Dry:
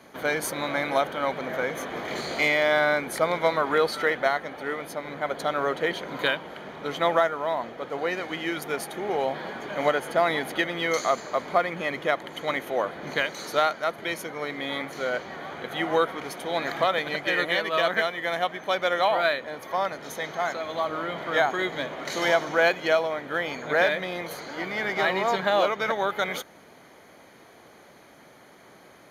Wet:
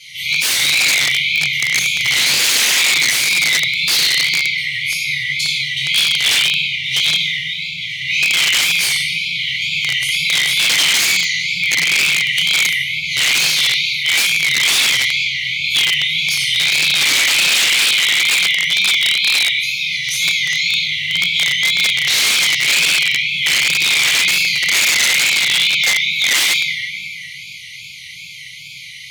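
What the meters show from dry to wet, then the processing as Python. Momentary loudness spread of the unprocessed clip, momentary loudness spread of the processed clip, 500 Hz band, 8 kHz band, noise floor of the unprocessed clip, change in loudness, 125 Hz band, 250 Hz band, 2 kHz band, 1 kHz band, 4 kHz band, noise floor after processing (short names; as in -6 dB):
9 LU, 7 LU, -14.5 dB, +25.0 dB, -52 dBFS, +13.5 dB, +6.0 dB, -4.5 dB, +14.0 dB, -6.5 dB, +22.5 dB, -33 dBFS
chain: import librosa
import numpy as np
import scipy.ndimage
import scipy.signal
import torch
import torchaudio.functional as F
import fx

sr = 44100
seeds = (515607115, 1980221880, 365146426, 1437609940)

p1 = fx.over_compress(x, sr, threshold_db=-31.0, ratio=-0.5)
p2 = x + (p1 * 10.0 ** (-2.5 / 20.0))
p3 = fx.brickwall_bandstop(p2, sr, low_hz=160.0, high_hz=2000.0)
p4 = fx.room_shoebox(p3, sr, seeds[0], volume_m3=120.0, walls='hard', distance_m=1.4)
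p5 = (np.mod(10.0 ** (16.0 / 20.0) * p4 + 1.0, 2.0) - 1.0) / 10.0 ** (16.0 / 20.0)
p6 = fx.wow_flutter(p5, sr, seeds[1], rate_hz=2.1, depth_cents=97.0)
y = fx.weighting(p6, sr, curve='D')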